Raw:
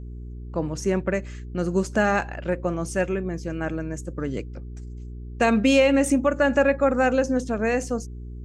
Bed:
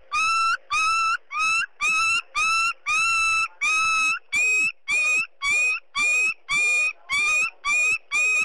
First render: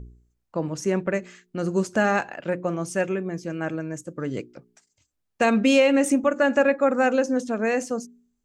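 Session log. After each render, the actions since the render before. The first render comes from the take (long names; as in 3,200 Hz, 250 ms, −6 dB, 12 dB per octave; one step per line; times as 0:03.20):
hum removal 60 Hz, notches 7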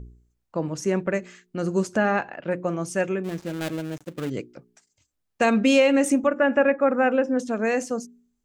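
0:01.97–0:02.51: high-frequency loss of the air 180 metres
0:03.24–0:04.30: gap after every zero crossing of 0.22 ms
0:06.27–0:07.39: Savitzky-Golay smoothing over 25 samples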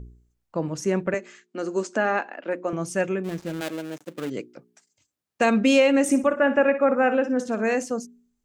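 0:01.14–0:02.73: elliptic band-pass filter 250–7,700 Hz
0:03.60–0:05.50: high-pass filter 300 Hz → 99 Hz
0:06.03–0:07.75: flutter between parallel walls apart 10.2 metres, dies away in 0.32 s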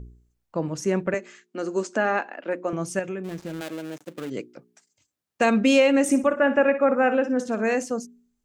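0:02.99–0:04.32: downward compressor 2.5 to 1, threshold −29 dBFS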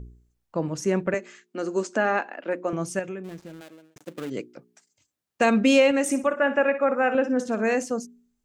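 0:02.82–0:03.96: fade out
0:05.91–0:07.15: low-shelf EQ 370 Hz −7.5 dB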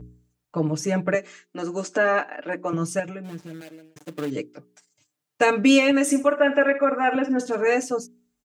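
high-pass filter 52 Hz
comb filter 6.7 ms, depth 94%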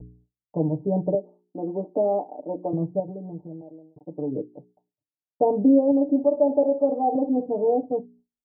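noise gate with hold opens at −49 dBFS
Butterworth low-pass 870 Hz 72 dB per octave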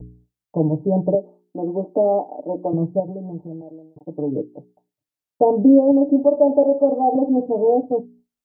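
level +5 dB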